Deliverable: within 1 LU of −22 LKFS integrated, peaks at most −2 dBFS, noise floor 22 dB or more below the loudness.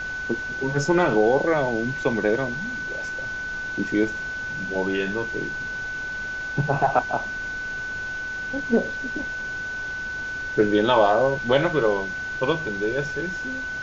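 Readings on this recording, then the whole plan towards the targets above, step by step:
interfering tone 1,500 Hz; level of the tone −28 dBFS; background noise floor −31 dBFS; target noise floor −47 dBFS; integrated loudness −24.5 LKFS; sample peak −6.5 dBFS; target loudness −22.0 LKFS
→ notch filter 1,500 Hz, Q 30
broadband denoise 16 dB, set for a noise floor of −31 dBFS
level +2.5 dB

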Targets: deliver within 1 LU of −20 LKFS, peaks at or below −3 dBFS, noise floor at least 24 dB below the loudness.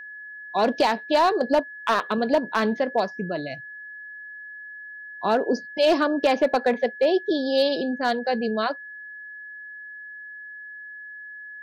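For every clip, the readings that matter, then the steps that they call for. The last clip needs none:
share of clipped samples 0.3%; peaks flattened at −12.5 dBFS; interfering tone 1,700 Hz; level of the tone −37 dBFS; integrated loudness −23.5 LKFS; sample peak −12.5 dBFS; target loudness −20.0 LKFS
→ clipped peaks rebuilt −12.5 dBFS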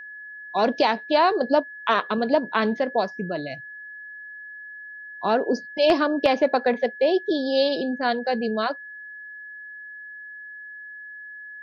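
share of clipped samples 0.0%; interfering tone 1,700 Hz; level of the tone −37 dBFS
→ notch filter 1,700 Hz, Q 30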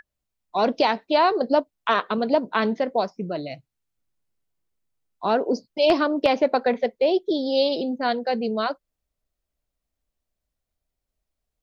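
interfering tone none found; integrated loudness −23.0 LKFS; sample peak −3.5 dBFS; target loudness −20.0 LKFS
→ level +3 dB
brickwall limiter −3 dBFS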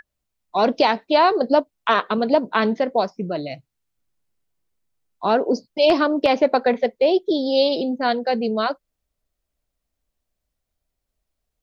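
integrated loudness −20.0 LKFS; sample peak −3.0 dBFS; background noise floor −80 dBFS

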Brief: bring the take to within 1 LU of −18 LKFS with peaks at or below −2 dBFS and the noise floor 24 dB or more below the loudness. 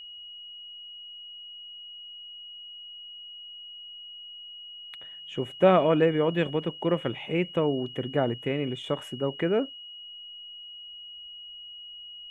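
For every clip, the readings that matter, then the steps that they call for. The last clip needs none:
interfering tone 2,900 Hz; level of the tone −41 dBFS; integrated loudness −26.5 LKFS; sample peak −6.5 dBFS; target loudness −18.0 LKFS
→ notch filter 2,900 Hz, Q 30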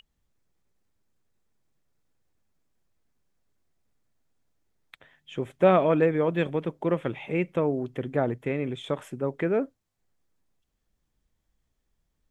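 interfering tone none found; integrated loudness −26.5 LKFS; sample peak −6.5 dBFS; target loudness −18.0 LKFS
→ level +8.5 dB
brickwall limiter −2 dBFS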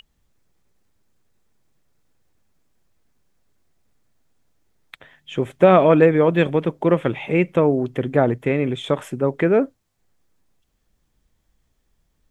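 integrated loudness −18.5 LKFS; sample peak −2.0 dBFS; background noise floor −70 dBFS

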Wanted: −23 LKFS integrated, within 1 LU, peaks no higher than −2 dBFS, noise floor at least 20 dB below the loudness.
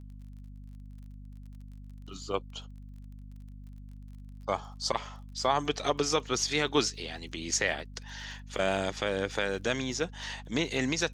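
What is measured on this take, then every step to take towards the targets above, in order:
crackle rate 29 per second; mains hum 50 Hz; hum harmonics up to 250 Hz; level of the hum −43 dBFS; integrated loudness −31.5 LKFS; sample peak −12.0 dBFS; target loudness −23.0 LKFS
→ click removal
hum removal 50 Hz, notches 5
level +8.5 dB

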